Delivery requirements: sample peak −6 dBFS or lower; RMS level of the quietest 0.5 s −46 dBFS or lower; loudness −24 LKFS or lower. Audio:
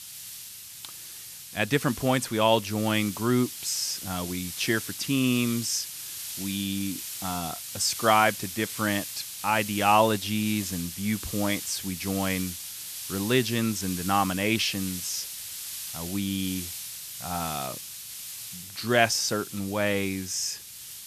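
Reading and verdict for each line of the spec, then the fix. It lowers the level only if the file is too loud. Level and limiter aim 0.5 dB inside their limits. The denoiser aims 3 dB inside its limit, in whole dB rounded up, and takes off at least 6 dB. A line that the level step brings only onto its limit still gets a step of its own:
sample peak −4.5 dBFS: out of spec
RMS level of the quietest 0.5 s −43 dBFS: out of spec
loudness −27.0 LKFS: in spec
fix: broadband denoise 6 dB, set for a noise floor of −43 dBFS
brickwall limiter −6.5 dBFS

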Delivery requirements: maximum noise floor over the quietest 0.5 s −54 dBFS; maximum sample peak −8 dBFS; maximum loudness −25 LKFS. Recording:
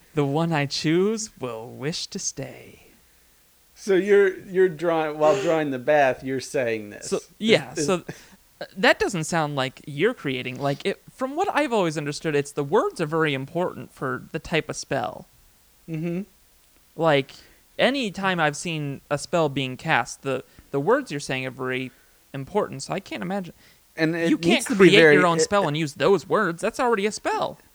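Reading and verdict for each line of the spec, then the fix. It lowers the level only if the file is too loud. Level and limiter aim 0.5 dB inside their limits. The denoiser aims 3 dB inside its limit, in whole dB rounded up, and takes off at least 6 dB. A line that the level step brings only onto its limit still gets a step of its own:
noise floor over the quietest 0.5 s −58 dBFS: in spec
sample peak −1.5 dBFS: out of spec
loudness −23.0 LKFS: out of spec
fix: level −2.5 dB
brickwall limiter −8.5 dBFS

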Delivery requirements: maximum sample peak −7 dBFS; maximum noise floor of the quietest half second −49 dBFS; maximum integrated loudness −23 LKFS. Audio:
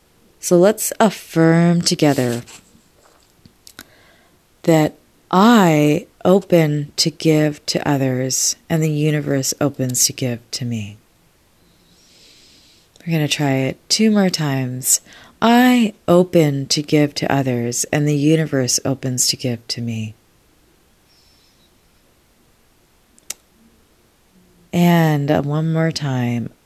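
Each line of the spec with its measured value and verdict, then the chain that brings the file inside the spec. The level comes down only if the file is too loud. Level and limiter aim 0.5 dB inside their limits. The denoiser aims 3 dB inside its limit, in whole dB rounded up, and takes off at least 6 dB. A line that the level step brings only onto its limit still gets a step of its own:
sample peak −1.5 dBFS: out of spec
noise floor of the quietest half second −56 dBFS: in spec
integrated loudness −17.0 LKFS: out of spec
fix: level −6.5 dB

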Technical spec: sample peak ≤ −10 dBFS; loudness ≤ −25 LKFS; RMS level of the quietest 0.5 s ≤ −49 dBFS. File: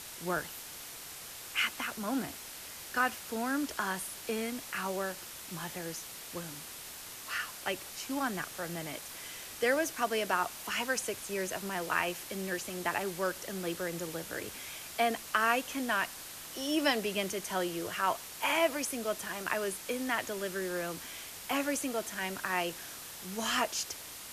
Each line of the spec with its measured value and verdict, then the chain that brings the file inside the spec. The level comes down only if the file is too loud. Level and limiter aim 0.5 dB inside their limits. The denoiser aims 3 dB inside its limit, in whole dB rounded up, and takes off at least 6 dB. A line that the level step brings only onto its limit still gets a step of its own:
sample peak −13.5 dBFS: in spec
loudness −34.5 LKFS: in spec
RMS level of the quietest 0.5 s −46 dBFS: out of spec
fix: broadband denoise 6 dB, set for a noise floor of −46 dBFS

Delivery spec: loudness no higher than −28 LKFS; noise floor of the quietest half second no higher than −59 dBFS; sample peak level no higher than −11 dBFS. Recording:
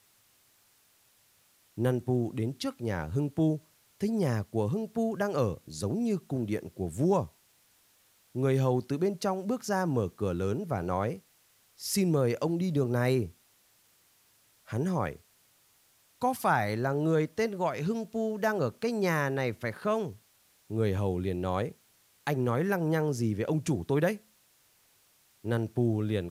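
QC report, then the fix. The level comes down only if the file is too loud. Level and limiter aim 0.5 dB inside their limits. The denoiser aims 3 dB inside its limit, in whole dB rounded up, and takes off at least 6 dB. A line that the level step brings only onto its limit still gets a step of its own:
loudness −30.5 LKFS: in spec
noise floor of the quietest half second −66 dBFS: in spec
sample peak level −13.0 dBFS: in spec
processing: no processing needed

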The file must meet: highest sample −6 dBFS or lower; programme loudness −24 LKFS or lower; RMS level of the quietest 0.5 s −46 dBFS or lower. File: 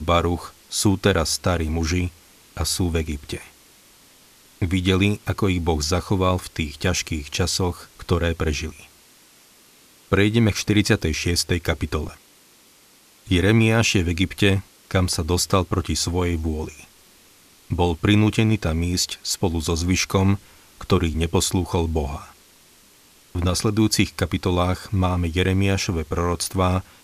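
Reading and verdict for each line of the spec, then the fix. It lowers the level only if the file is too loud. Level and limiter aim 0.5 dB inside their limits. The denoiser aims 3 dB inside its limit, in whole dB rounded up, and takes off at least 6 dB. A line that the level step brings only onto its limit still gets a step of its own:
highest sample −4.0 dBFS: out of spec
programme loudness −22.0 LKFS: out of spec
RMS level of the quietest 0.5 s −53 dBFS: in spec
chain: level −2.5 dB

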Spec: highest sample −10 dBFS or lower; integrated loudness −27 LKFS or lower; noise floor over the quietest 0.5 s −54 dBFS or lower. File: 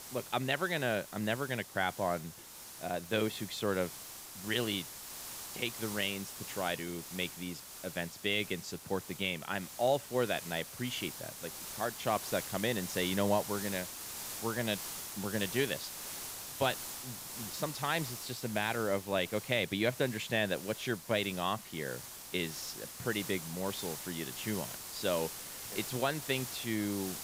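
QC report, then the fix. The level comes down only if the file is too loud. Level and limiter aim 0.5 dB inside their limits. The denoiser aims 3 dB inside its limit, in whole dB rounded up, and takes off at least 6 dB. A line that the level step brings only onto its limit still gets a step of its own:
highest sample −16.0 dBFS: in spec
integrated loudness −35.5 LKFS: in spec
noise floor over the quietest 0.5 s −50 dBFS: out of spec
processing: broadband denoise 7 dB, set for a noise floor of −50 dBFS

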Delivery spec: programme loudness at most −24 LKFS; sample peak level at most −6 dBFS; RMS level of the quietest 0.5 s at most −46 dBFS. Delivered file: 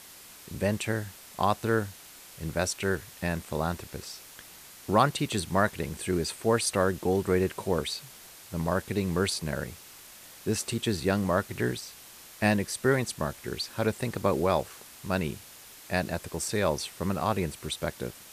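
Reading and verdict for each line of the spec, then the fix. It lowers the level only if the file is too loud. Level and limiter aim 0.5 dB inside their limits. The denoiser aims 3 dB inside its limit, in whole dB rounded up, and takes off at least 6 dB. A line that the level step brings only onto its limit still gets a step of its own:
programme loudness −29.5 LKFS: in spec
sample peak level −7.0 dBFS: in spec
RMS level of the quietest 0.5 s −49 dBFS: in spec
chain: no processing needed

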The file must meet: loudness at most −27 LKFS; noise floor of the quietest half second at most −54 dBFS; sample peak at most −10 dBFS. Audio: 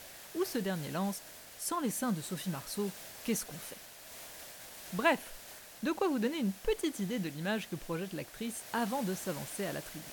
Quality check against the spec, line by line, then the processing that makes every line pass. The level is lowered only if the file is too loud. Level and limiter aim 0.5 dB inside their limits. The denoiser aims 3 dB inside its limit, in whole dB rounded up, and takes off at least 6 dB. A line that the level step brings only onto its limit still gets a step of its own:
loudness −36.0 LKFS: in spec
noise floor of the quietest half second −50 dBFS: out of spec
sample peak −15.5 dBFS: in spec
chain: broadband denoise 7 dB, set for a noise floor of −50 dBFS

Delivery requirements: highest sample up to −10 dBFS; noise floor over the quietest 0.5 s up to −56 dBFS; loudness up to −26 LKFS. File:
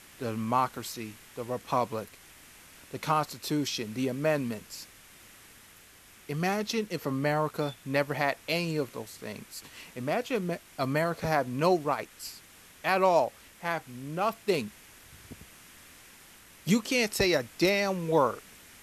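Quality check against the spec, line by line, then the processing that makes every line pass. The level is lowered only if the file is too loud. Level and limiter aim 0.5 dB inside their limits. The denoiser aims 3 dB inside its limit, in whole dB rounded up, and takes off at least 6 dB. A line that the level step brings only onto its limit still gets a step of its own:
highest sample −11.5 dBFS: in spec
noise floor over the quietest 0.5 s −55 dBFS: out of spec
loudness −29.5 LKFS: in spec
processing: broadband denoise 6 dB, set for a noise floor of −55 dBFS

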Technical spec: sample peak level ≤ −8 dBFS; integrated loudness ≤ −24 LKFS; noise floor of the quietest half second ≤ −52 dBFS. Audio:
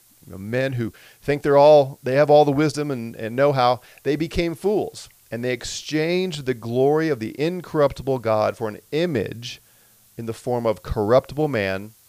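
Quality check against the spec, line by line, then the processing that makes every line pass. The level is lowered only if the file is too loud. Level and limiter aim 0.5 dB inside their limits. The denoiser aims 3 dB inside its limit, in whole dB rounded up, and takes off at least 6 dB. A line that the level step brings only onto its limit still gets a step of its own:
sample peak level −4.0 dBFS: out of spec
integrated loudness −21.0 LKFS: out of spec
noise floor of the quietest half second −55 dBFS: in spec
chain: level −3.5 dB
brickwall limiter −8.5 dBFS

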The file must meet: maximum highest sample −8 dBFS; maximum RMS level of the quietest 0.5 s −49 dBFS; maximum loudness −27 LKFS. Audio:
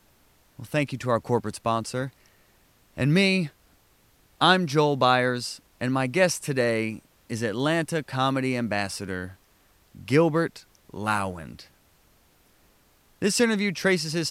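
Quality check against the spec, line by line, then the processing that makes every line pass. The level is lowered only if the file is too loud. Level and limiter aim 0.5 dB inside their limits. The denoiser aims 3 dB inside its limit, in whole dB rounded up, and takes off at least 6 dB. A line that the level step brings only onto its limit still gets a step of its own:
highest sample −5.0 dBFS: out of spec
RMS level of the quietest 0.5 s −61 dBFS: in spec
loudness −25.0 LKFS: out of spec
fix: level −2.5 dB
brickwall limiter −8.5 dBFS

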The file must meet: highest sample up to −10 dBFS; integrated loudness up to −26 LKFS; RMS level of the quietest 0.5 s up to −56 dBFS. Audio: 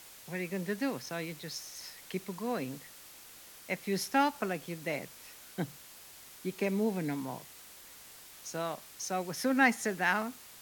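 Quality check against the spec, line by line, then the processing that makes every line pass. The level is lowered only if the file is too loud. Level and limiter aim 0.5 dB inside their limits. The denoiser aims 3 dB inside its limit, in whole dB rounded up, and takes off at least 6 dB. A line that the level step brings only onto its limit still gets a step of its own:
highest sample −11.0 dBFS: in spec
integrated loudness −34.0 LKFS: in spec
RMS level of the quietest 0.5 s −53 dBFS: out of spec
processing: broadband denoise 6 dB, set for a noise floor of −53 dBFS

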